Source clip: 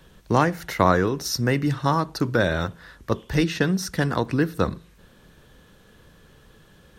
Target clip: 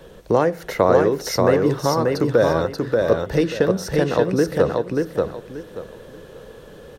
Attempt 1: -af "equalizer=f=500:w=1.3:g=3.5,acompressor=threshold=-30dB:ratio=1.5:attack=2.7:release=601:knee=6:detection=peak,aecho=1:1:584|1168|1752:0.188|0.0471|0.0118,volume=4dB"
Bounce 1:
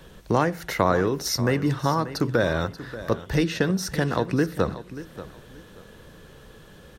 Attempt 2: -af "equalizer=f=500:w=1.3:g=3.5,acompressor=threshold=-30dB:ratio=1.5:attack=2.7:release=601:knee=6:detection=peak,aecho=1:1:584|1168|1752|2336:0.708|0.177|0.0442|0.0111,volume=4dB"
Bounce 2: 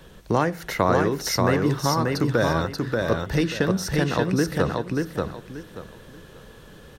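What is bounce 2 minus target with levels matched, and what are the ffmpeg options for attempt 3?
500 Hz band -3.5 dB
-af "equalizer=f=500:w=1.3:g=14,acompressor=threshold=-30dB:ratio=1.5:attack=2.7:release=601:knee=6:detection=peak,aecho=1:1:584|1168|1752|2336:0.708|0.177|0.0442|0.0111,volume=4dB"

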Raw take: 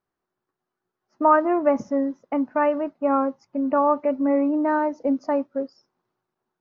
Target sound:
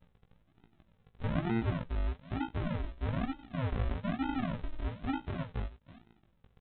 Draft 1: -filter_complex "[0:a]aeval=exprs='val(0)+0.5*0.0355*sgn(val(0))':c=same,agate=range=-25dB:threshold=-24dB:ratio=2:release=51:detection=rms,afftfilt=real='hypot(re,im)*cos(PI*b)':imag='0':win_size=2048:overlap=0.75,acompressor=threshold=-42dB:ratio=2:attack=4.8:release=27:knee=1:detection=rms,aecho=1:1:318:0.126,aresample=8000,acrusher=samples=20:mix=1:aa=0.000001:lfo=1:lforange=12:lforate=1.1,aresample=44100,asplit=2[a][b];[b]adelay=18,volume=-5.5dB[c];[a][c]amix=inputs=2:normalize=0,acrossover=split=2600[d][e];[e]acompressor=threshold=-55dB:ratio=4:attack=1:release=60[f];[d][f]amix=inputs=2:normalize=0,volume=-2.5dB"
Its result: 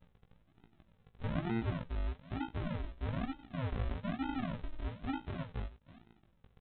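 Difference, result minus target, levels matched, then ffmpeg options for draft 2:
compressor: peak gain reduction +3.5 dB
-filter_complex "[0:a]aeval=exprs='val(0)+0.5*0.0355*sgn(val(0))':c=same,agate=range=-25dB:threshold=-24dB:ratio=2:release=51:detection=rms,afftfilt=real='hypot(re,im)*cos(PI*b)':imag='0':win_size=2048:overlap=0.75,acompressor=threshold=-35dB:ratio=2:attack=4.8:release=27:knee=1:detection=rms,aecho=1:1:318:0.126,aresample=8000,acrusher=samples=20:mix=1:aa=0.000001:lfo=1:lforange=12:lforate=1.1,aresample=44100,asplit=2[a][b];[b]adelay=18,volume=-5.5dB[c];[a][c]amix=inputs=2:normalize=0,acrossover=split=2600[d][e];[e]acompressor=threshold=-55dB:ratio=4:attack=1:release=60[f];[d][f]amix=inputs=2:normalize=0,volume=-2.5dB"

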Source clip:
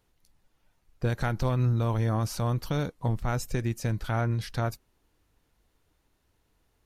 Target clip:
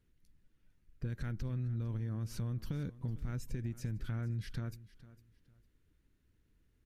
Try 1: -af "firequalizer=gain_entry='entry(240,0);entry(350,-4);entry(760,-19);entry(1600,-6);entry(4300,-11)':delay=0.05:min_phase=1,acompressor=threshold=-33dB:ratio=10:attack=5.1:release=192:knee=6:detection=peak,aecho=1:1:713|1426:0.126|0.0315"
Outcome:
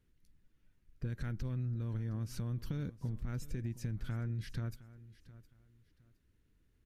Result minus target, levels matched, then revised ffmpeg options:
echo 0.259 s late
-af "firequalizer=gain_entry='entry(240,0);entry(350,-4);entry(760,-19);entry(1600,-6);entry(4300,-11)':delay=0.05:min_phase=1,acompressor=threshold=-33dB:ratio=10:attack=5.1:release=192:knee=6:detection=peak,aecho=1:1:454|908:0.126|0.0315"

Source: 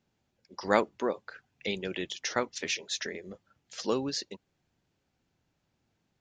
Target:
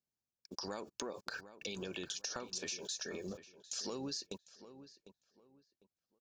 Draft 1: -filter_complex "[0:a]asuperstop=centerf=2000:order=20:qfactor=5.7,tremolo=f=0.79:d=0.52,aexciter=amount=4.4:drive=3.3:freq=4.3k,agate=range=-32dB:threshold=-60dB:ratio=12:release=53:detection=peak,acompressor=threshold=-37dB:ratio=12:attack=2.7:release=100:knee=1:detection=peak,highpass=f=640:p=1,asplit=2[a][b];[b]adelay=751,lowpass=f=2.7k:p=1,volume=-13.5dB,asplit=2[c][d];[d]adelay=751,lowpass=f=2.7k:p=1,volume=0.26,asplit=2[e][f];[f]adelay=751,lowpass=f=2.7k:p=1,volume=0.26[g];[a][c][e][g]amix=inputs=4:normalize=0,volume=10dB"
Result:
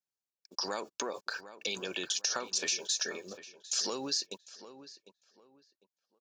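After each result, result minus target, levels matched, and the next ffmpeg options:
compressor: peak gain reduction -10 dB; 500 Hz band -4.0 dB
-filter_complex "[0:a]asuperstop=centerf=2000:order=20:qfactor=5.7,tremolo=f=0.79:d=0.52,aexciter=amount=4.4:drive=3.3:freq=4.3k,agate=range=-32dB:threshold=-60dB:ratio=12:release=53:detection=peak,acompressor=threshold=-48dB:ratio=12:attack=2.7:release=100:knee=1:detection=peak,highpass=f=640:p=1,asplit=2[a][b];[b]adelay=751,lowpass=f=2.7k:p=1,volume=-13.5dB,asplit=2[c][d];[d]adelay=751,lowpass=f=2.7k:p=1,volume=0.26,asplit=2[e][f];[f]adelay=751,lowpass=f=2.7k:p=1,volume=0.26[g];[a][c][e][g]amix=inputs=4:normalize=0,volume=10dB"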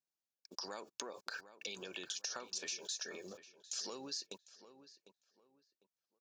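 500 Hz band -4.0 dB
-filter_complex "[0:a]asuperstop=centerf=2000:order=20:qfactor=5.7,tremolo=f=0.79:d=0.52,aexciter=amount=4.4:drive=3.3:freq=4.3k,agate=range=-32dB:threshold=-60dB:ratio=12:release=53:detection=peak,acompressor=threshold=-48dB:ratio=12:attack=2.7:release=100:knee=1:detection=peak,asplit=2[a][b];[b]adelay=751,lowpass=f=2.7k:p=1,volume=-13.5dB,asplit=2[c][d];[d]adelay=751,lowpass=f=2.7k:p=1,volume=0.26,asplit=2[e][f];[f]adelay=751,lowpass=f=2.7k:p=1,volume=0.26[g];[a][c][e][g]amix=inputs=4:normalize=0,volume=10dB"

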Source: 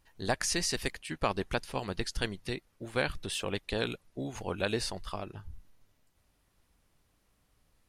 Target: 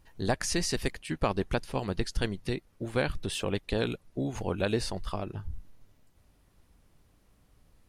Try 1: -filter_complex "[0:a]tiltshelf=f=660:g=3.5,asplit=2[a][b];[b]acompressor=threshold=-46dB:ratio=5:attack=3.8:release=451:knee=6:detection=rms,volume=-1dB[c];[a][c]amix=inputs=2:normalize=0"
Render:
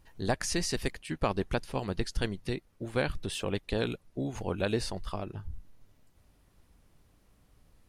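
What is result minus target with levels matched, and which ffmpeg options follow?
compressor: peak gain reduction +9 dB
-filter_complex "[0:a]tiltshelf=f=660:g=3.5,asplit=2[a][b];[b]acompressor=threshold=-34.5dB:ratio=5:attack=3.8:release=451:knee=6:detection=rms,volume=-1dB[c];[a][c]amix=inputs=2:normalize=0"

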